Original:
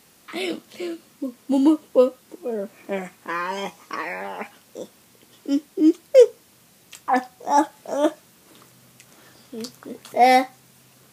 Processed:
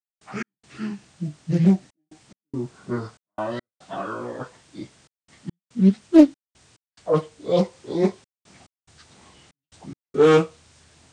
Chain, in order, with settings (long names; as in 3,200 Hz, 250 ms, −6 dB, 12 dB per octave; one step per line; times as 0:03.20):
phase-vocoder pitch shift without resampling −8.5 semitones
gate pattern ".x.xxxxxx.x.xxx" 71 BPM −60 dB
highs frequency-modulated by the lows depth 0.36 ms
level +1 dB